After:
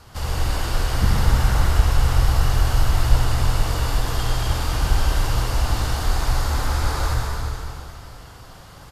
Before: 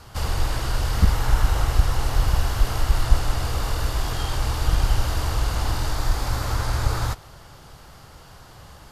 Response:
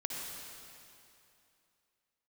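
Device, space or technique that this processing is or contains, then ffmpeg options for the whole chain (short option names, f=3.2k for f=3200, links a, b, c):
cave: -filter_complex "[0:a]aecho=1:1:357:0.251[a];[1:a]atrim=start_sample=2205[b];[a][b]afir=irnorm=-1:irlink=0"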